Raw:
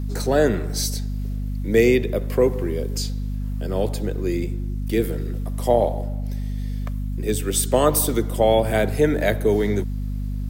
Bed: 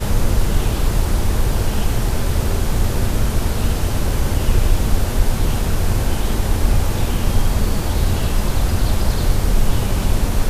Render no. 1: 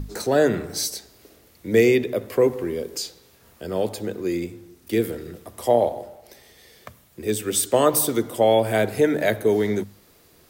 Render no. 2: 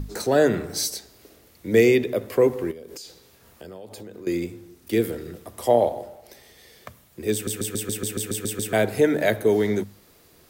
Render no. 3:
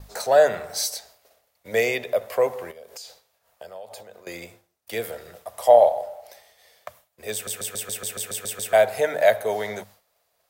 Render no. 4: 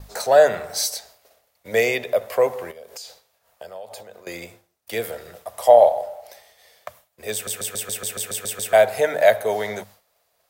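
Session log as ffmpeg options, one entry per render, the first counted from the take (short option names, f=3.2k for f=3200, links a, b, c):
-af "bandreject=f=50:t=h:w=6,bandreject=f=100:t=h:w=6,bandreject=f=150:t=h:w=6,bandreject=f=200:t=h:w=6,bandreject=f=250:t=h:w=6"
-filter_complex "[0:a]asettb=1/sr,asplit=3[a][b][c];[a]atrim=end=2.714[d];[b]atrim=start=2.71:end=4.27,asetpts=PTS-STARTPTS,afade=t=in:d=0.004:c=qsin,afade=t=out:st=1.556:d=0.004:c=qsin,acompressor=threshold=-35dB:ratio=16:attack=3.2:release=140:knee=1:detection=peak[e];[c]atrim=start=4.266[f];[d][e]acrossfade=d=0.004:c1=hsin:c2=qsin[g];[g][f]acrossfade=d=0.004:c1=qsin:c2=hsin,asplit=11[h][i][j][k][l][m][n][o][p][q][r];[h]atrim=end=7.472[s];[i]atrim=start=7.328:end=7.472[t];[j]atrim=start=7.328:end=7.472[u];[k]atrim=start=7.328:end=7.472[v];[l]atrim=start=7.328:end=7.472[w];[m]atrim=start=7.328:end=7.472[x];[n]atrim=start=7.328:end=7.472[y];[o]atrim=start=7.328:end=7.472[z];[p]atrim=start=7.328:end=7.472[aa];[q]atrim=start=7.328:end=7.472[ab];[r]atrim=start=8.728[ac];[s][t]acrossfade=d=0.004:c1=hsin:c2=hsin[ad];[ad][u]acrossfade=d=0.004:c1=hsin:c2=hsin[ae];[ae][v]acrossfade=d=0.004:c1=hsin:c2=hsin[af];[af][w]acrossfade=d=0.004:c1=hsin:c2=hsin[ag];[ag][x]acrossfade=d=0.004:c1=hsin:c2=hsin[ah];[ah][y]acrossfade=d=0.004:c1=hsin:c2=hsin[ai];[ai][z]acrossfade=d=0.004:c1=hsin:c2=hsin[aj];[aj][aa]acrossfade=d=0.004:c1=hsin:c2=hsin[ak];[ak][ab]acrossfade=d=0.004:c1=hsin:c2=hsin[al];[al][ac]acrossfade=d=0.004:c1=hsin:c2=hsin"
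-af "lowshelf=f=450:t=q:w=3:g=-11.5,agate=range=-33dB:threshold=-45dB:ratio=3:detection=peak"
-af "volume=2.5dB,alimiter=limit=-1dB:level=0:latency=1"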